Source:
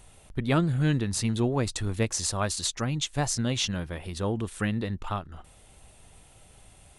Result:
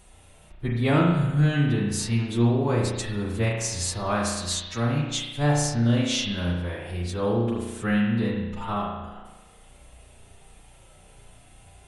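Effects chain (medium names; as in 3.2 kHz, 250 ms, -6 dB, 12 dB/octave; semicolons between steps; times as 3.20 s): time stretch by phase-locked vocoder 1.7×; spring tank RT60 1.1 s, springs 34 ms, chirp 70 ms, DRR -1.5 dB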